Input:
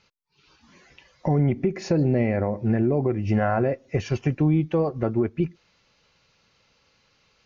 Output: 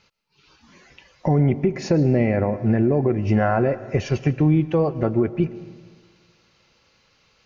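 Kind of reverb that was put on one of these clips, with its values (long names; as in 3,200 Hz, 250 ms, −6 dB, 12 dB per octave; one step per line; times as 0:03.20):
comb and all-pass reverb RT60 1.7 s, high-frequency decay 0.7×, pre-delay 80 ms, DRR 15.5 dB
level +3 dB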